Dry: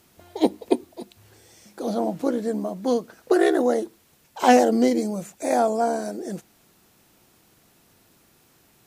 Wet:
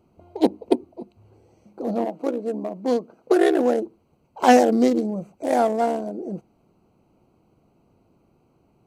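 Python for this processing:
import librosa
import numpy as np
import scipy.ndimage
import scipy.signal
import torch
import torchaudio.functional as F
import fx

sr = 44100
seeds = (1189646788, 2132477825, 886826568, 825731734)

y = fx.wiener(x, sr, points=25)
y = fx.highpass(y, sr, hz=fx.line((2.04, 390.0), (3.46, 120.0)), slope=12, at=(2.04, 3.46), fade=0.02)
y = y * 10.0 ** (1.5 / 20.0)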